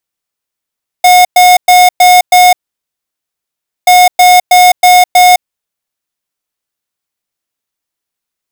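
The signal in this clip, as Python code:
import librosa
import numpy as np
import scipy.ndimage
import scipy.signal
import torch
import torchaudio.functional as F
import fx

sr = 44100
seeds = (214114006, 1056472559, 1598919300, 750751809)

y = fx.beep_pattern(sr, wave='square', hz=724.0, on_s=0.21, off_s=0.11, beeps=5, pause_s=1.34, groups=2, level_db=-3.5)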